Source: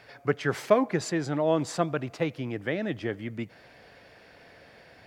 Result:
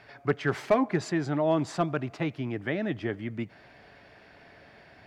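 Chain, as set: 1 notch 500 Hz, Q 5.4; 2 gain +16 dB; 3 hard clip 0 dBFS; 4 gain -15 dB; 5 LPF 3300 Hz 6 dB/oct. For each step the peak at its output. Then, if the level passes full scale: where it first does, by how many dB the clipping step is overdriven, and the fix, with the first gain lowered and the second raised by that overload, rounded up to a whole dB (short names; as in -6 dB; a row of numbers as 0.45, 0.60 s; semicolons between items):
-8.0, +8.0, 0.0, -15.0, -15.0 dBFS; step 2, 8.0 dB; step 2 +8 dB, step 4 -7 dB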